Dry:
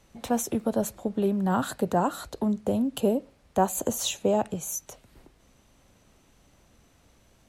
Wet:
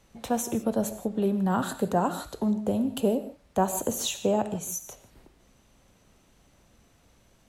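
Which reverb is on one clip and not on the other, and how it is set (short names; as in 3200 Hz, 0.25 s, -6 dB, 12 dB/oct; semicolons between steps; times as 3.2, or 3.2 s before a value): non-linear reverb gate 0.19 s flat, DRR 10.5 dB; gain -1 dB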